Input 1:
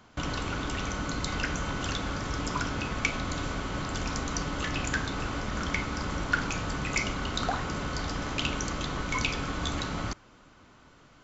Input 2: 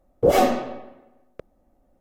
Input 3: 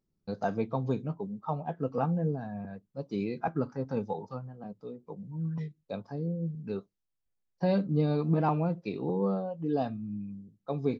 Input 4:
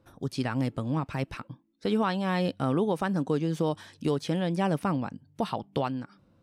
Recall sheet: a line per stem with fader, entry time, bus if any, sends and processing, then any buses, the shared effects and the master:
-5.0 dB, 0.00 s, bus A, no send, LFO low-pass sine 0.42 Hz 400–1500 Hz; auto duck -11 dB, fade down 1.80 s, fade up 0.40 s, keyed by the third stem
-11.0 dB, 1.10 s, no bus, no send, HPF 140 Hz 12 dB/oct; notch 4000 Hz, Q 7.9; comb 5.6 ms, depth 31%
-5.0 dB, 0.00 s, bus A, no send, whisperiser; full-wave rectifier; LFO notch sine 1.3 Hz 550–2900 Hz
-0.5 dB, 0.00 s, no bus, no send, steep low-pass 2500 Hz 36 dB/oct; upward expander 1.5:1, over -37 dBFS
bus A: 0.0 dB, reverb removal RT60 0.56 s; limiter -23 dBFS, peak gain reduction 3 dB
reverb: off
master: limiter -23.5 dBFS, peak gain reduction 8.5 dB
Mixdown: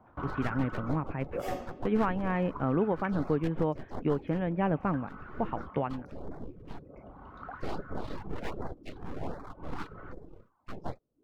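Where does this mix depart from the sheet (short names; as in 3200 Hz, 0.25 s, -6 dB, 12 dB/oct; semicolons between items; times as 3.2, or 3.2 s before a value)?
stem 2 -11.0 dB -> -19.5 dB; master: missing limiter -23.5 dBFS, peak gain reduction 8.5 dB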